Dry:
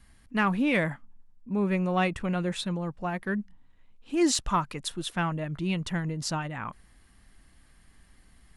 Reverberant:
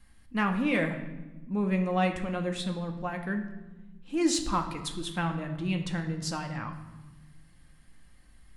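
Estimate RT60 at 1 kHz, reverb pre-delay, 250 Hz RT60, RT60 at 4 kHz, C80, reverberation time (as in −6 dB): 1.1 s, 4 ms, 1.9 s, 0.85 s, 11.5 dB, 1.2 s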